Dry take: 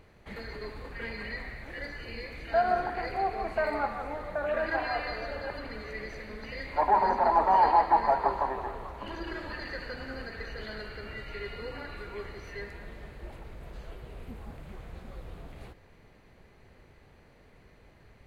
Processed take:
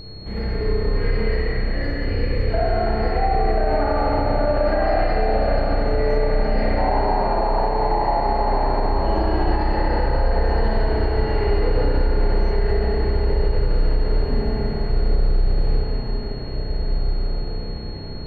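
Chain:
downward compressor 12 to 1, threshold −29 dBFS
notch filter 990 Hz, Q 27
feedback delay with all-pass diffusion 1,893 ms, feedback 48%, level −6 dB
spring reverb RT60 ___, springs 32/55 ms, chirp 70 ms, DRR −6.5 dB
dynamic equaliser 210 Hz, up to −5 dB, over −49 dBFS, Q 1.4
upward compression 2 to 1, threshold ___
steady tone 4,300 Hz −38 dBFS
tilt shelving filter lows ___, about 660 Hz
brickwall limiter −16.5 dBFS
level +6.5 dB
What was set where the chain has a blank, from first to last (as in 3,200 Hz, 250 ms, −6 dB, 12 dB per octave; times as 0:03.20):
2.5 s, −49 dBFS, +9.5 dB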